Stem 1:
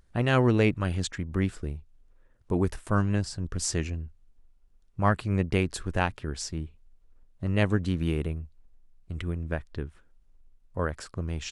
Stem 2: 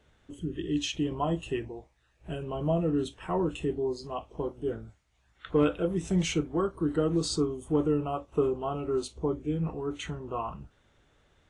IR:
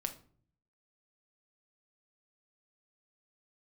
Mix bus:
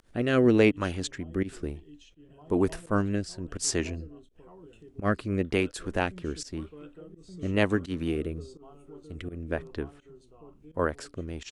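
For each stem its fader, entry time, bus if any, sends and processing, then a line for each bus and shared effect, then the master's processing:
+3.0 dB, 0.00 s, no send, no echo send, resonant low shelf 200 Hz -6.5 dB, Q 1.5
-9.0 dB, 0.00 s, no send, echo send -11.5 dB, auto duck -11 dB, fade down 1.35 s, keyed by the first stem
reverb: off
echo: echo 1.177 s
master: upward compressor, threshold -46 dBFS; rotary speaker horn 1 Hz; pump 84 bpm, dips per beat 1, -21 dB, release 0.11 s

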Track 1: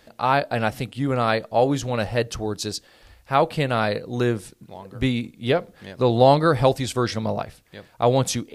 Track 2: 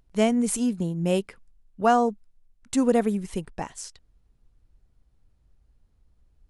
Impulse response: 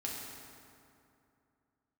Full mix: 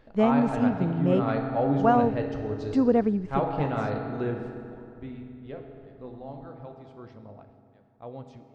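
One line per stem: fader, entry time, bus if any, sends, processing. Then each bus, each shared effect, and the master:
4.62 s -3 dB -> 4.84 s -15 dB -> 5.89 s -15 dB -> 6.26 s -23 dB, 0.00 s, send -6 dB, auto duck -10 dB, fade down 0.35 s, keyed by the second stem
+1.0 dB, 0.00 s, no send, dry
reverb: on, RT60 2.6 s, pre-delay 4 ms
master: tape spacing loss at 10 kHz 36 dB

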